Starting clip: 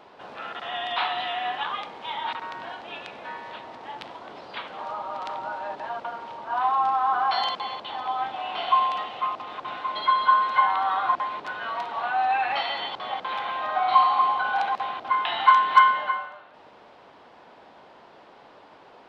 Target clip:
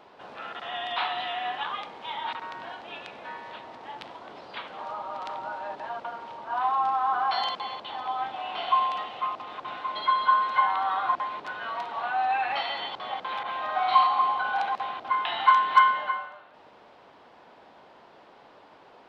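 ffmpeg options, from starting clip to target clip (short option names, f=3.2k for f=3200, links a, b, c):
-filter_complex "[0:a]asettb=1/sr,asplit=3[a][b][c];[a]atrim=end=13.434[d];[b]atrim=start=13.43:end=14.07,asetpts=PTS-STARTPTS,afade=t=in:d=0.004:c=qsin,afade=t=out:st=0.636:d=0.004:c=qsin,adynamicequalizer=threshold=0.0398:dfrequency=1600:dqfactor=0.7:tfrequency=1600:tqfactor=0.7:attack=5:release=100:ratio=0.375:range=2:mode=boostabove:tftype=highshelf[e];[c]atrim=start=14.066[f];[d][e]acrossfade=d=0.004:c1=hsin:c2=qsin[g];[g][f]acrossfade=d=0.004:c1=qsin:c2=hsin,volume=-2.5dB"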